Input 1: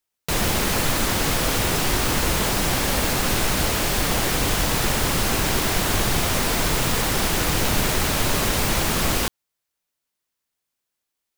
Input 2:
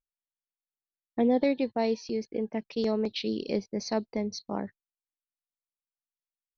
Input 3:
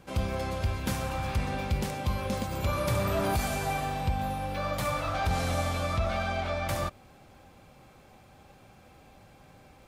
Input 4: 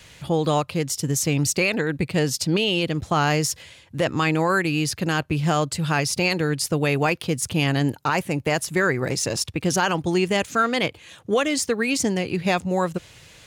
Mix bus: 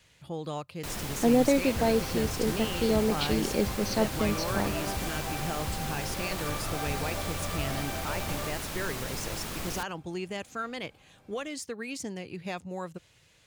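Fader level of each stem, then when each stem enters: -15.0 dB, +2.0 dB, -7.0 dB, -14.5 dB; 0.55 s, 0.05 s, 1.60 s, 0.00 s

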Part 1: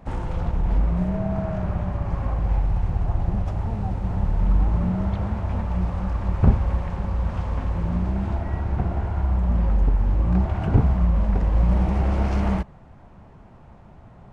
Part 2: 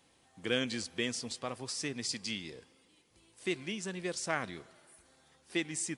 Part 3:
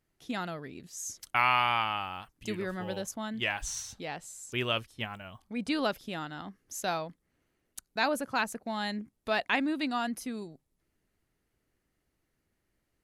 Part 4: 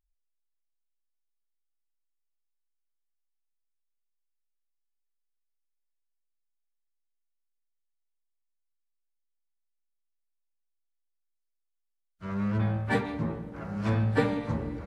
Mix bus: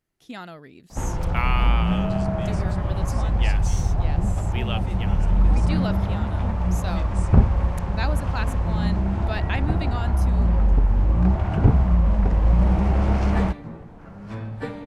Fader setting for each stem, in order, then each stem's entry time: +1.5 dB, -10.0 dB, -2.0 dB, -6.5 dB; 0.90 s, 1.40 s, 0.00 s, 0.45 s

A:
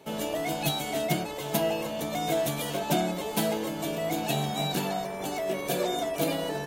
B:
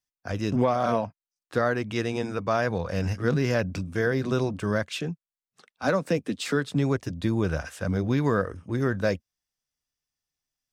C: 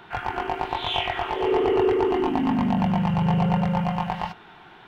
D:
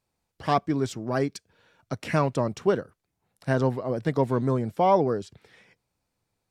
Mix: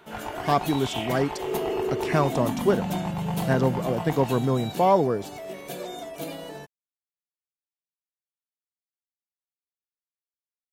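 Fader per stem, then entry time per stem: -7.0 dB, mute, -7.5 dB, +1.0 dB; 0.00 s, mute, 0.00 s, 0.00 s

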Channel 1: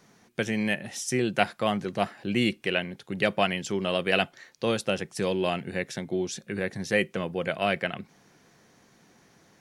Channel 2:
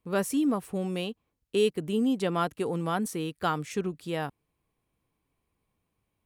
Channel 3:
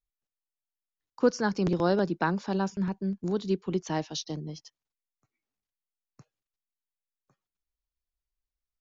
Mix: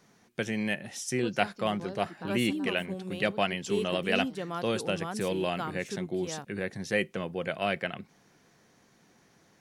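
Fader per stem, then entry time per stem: -3.5 dB, -8.0 dB, -17.0 dB; 0.00 s, 2.15 s, 0.00 s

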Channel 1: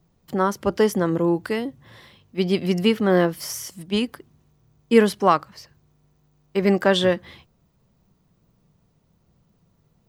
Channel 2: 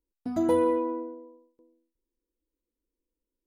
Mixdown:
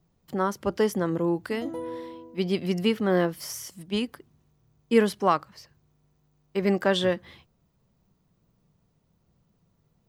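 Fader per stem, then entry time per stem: -5.0 dB, -11.5 dB; 0.00 s, 1.25 s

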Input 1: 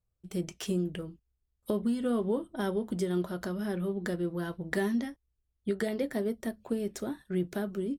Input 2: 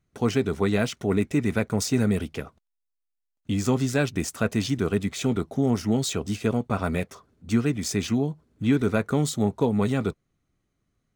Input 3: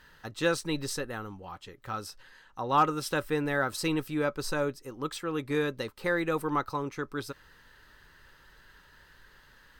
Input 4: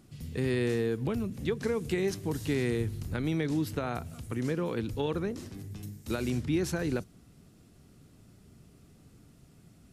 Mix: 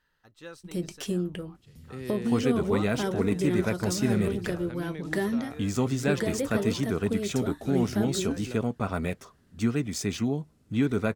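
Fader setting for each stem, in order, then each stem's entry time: +1.5 dB, -3.5 dB, -17.0 dB, -9.0 dB; 0.40 s, 2.10 s, 0.00 s, 1.55 s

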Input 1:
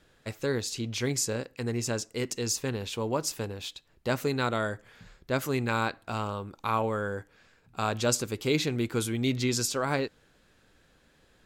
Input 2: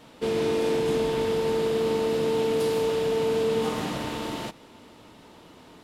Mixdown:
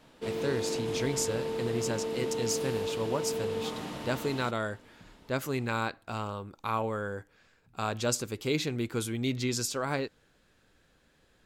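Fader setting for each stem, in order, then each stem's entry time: -3.0 dB, -8.5 dB; 0.00 s, 0.00 s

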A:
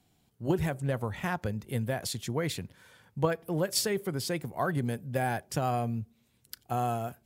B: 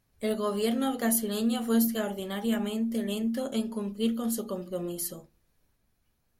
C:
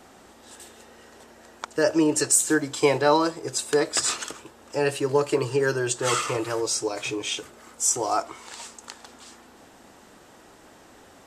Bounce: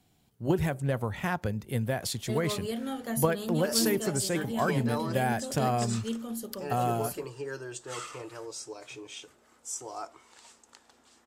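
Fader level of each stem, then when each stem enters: +1.5 dB, -6.5 dB, -14.5 dB; 0.00 s, 2.05 s, 1.85 s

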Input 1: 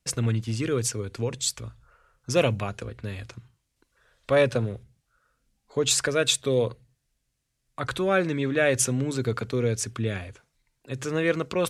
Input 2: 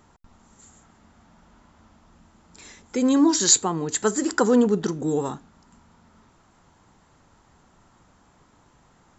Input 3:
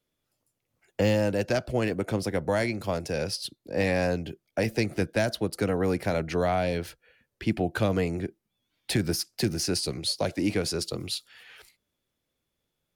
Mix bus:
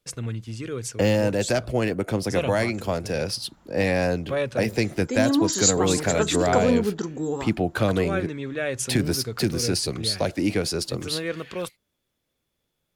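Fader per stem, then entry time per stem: -5.5 dB, -3.5 dB, +3.0 dB; 0.00 s, 2.15 s, 0.00 s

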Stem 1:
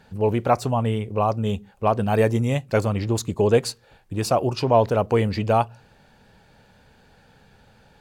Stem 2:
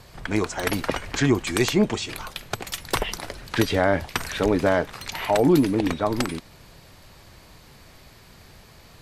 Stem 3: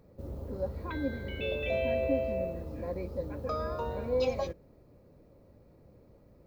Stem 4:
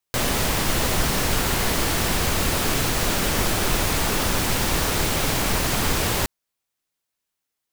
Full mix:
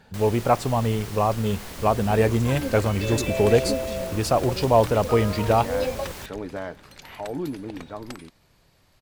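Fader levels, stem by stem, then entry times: -0.5 dB, -12.5 dB, +2.5 dB, -16.0 dB; 0.00 s, 1.90 s, 1.60 s, 0.00 s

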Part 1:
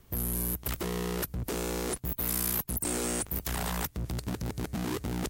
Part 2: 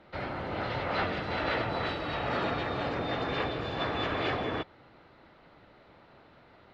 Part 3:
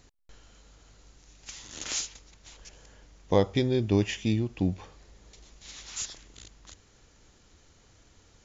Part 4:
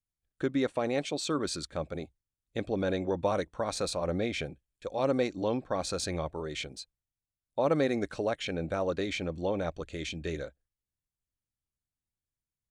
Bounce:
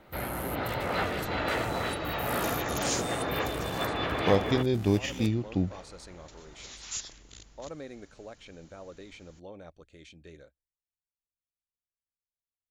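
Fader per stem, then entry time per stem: -9.5 dB, +0.5 dB, -1.0 dB, -15.0 dB; 0.00 s, 0.00 s, 0.95 s, 0.00 s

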